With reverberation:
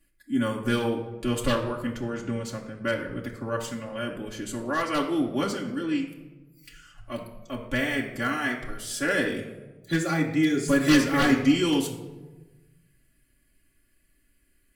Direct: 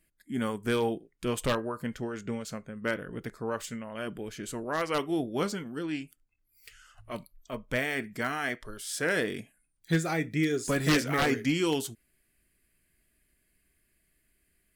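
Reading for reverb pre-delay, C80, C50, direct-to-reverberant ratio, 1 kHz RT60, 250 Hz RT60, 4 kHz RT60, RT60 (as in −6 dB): 3 ms, 10.0 dB, 8.0 dB, −3.5 dB, 1.0 s, 1.5 s, 0.70 s, 1.2 s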